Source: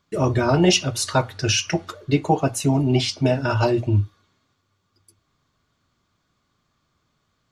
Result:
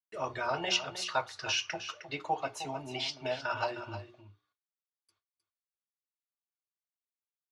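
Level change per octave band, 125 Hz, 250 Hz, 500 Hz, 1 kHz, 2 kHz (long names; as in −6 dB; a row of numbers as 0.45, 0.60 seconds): −26.5, −24.0, −14.5, −9.0, −7.5 decibels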